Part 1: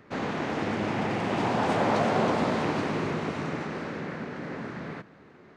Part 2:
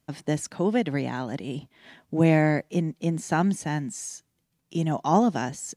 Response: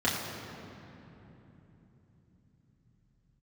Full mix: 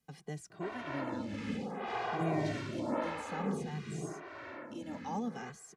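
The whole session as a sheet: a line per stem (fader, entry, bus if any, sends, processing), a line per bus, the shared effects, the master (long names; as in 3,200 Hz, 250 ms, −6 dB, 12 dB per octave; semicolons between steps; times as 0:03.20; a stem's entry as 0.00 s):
−3.0 dB, 0.50 s, no send, amplitude tremolo 2 Hz, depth 38%; phaser with staggered stages 0.84 Hz
−13.5 dB, 0.00 s, no send, multiband upward and downward compressor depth 40%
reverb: not used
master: barber-pole flanger 2 ms −0.56 Hz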